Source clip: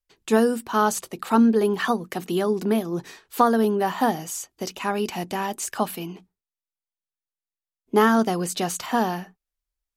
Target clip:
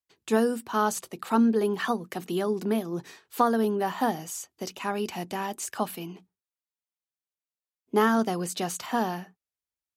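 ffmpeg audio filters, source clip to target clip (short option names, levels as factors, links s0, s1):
-af "highpass=f=70:w=0.5412,highpass=f=70:w=1.3066,volume=0.596"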